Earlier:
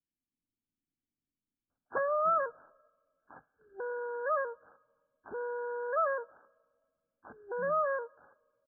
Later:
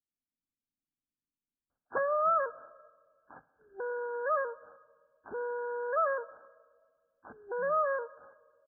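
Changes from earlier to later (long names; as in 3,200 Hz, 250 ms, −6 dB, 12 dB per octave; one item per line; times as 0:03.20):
speech −6.0 dB
background: send +10.0 dB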